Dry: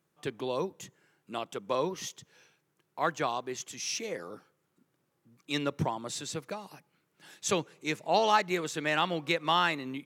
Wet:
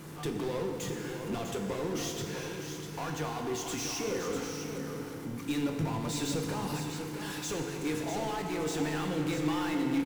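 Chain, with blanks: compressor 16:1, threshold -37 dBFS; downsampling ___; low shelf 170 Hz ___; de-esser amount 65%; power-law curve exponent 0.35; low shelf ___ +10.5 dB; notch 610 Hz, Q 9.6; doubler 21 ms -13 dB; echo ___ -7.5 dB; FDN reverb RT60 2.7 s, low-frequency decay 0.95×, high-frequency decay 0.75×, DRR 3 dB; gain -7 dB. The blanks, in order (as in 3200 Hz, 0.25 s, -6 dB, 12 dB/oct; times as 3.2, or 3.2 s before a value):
32000 Hz, -6 dB, 420 Hz, 0.648 s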